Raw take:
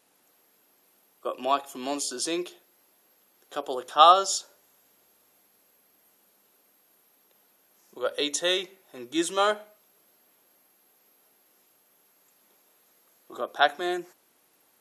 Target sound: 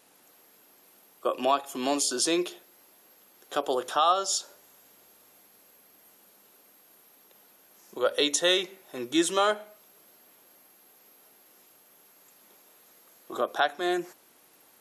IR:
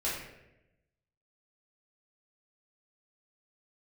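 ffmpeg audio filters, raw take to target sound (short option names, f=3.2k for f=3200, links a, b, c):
-filter_complex "[0:a]asplit=2[a][b];[b]acompressor=threshold=-31dB:ratio=6,volume=-0.5dB[c];[a][c]amix=inputs=2:normalize=0,alimiter=limit=-11.5dB:level=0:latency=1:release=400"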